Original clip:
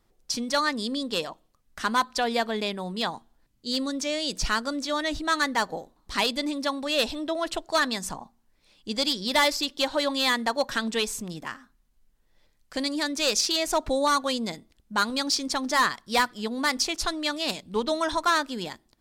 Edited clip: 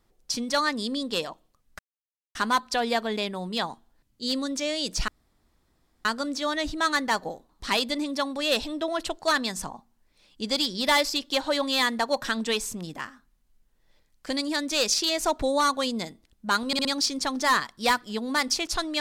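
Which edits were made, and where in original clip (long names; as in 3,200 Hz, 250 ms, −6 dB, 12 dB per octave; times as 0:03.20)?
0:01.79: splice in silence 0.56 s
0:04.52: splice in room tone 0.97 s
0:15.14: stutter 0.06 s, 4 plays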